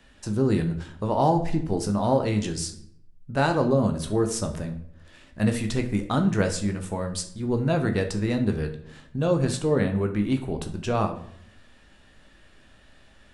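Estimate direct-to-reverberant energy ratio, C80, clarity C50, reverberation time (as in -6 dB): 4.5 dB, 14.0 dB, 10.5 dB, 0.65 s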